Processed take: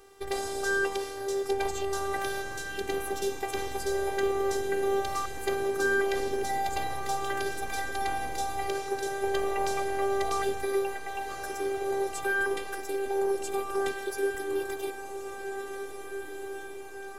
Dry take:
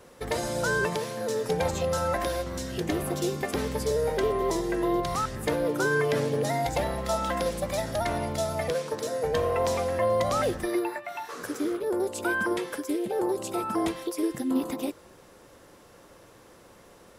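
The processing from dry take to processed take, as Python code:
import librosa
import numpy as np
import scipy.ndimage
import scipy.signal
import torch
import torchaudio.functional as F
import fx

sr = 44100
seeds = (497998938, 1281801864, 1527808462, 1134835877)

y = fx.robotise(x, sr, hz=395.0)
y = fx.echo_diffused(y, sr, ms=1820, feedback_pct=58, wet_db=-8)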